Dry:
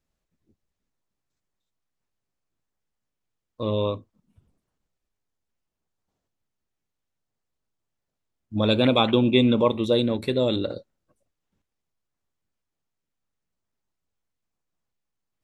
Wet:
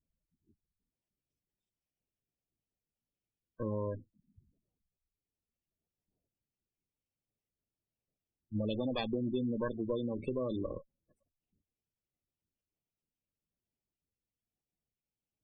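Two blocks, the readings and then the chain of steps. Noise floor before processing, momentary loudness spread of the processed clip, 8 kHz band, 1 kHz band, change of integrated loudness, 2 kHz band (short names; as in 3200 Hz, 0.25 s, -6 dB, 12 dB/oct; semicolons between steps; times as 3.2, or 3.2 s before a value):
-83 dBFS, 7 LU, n/a, -16.5 dB, -14.5 dB, -17.0 dB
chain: minimum comb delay 0.37 ms; spectral gate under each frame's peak -15 dB strong; compressor 4:1, threshold -28 dBFS, peak gain reduction 11.5 dB; gain -4.5 dB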